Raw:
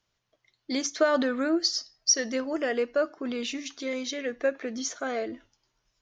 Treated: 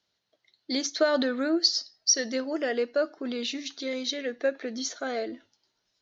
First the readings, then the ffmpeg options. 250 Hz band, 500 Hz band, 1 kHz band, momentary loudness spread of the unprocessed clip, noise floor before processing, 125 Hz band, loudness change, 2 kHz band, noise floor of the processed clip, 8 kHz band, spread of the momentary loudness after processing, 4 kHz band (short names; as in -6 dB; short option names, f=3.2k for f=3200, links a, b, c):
-0.5 dB, 0.0 dB, -2.0 dB, 9 LU, -78 dBFS, n/a, +0.5 dB, -1.0 dB, -79 dBFS, -0.5 dB, 10 LU, +2.5 dB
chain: -af "highpass=110,equalizer=f=130:t=q:w=4:g=-10,equalizer=f=1.1k:t=q:w=4:g=-6,equalizer=f=2.4k:t=q:w=4:g=-3,equalizer=f=4.1k:t=q:w=4:g=8,lowpass=f=6.6k:w=0.5412,lowpass=f=6.6k:w=1.3066"